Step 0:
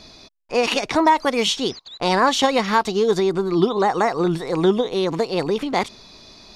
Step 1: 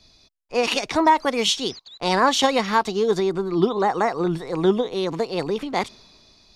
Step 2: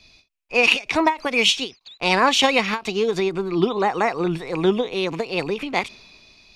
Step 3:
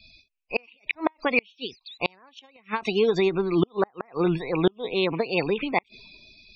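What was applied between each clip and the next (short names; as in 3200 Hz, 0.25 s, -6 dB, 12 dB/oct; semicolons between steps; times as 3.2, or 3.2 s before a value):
three-band expander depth 40%; gain -2 dB
bell 2500 Hz +13.5 dB 0.47 oct; ending taper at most 260 dB/s
loudest bins only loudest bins 64; flipped gate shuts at -9 dBFS, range -37 dB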